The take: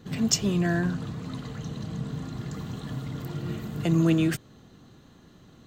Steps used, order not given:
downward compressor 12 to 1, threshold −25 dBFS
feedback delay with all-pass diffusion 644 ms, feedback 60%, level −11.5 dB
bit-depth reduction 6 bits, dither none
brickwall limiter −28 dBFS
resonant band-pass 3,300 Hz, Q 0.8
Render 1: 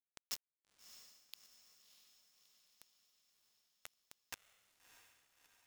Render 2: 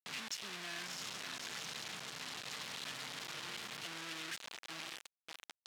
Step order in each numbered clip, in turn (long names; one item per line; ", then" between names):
downward compressor, then brickwall limiter, then resonant band-pass, then bit-depth reduction, then feedback delay with all-pass diffusion
downward compressor, then feedback delay with all-pass diffusion, then brickwall limiter, then bit-depth reduction, then resonant band-pass